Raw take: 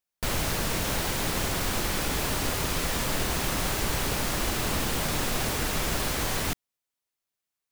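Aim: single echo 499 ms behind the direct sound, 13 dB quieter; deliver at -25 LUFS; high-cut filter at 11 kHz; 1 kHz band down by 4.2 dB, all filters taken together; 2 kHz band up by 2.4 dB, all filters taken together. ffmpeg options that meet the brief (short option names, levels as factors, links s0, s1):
-af "lowpass=11000,equalizer=f=1000:t=o:g=-7,equalizer=f=2000:t=o:g=5,aecho=1:1:499:0.224,volume=1.41"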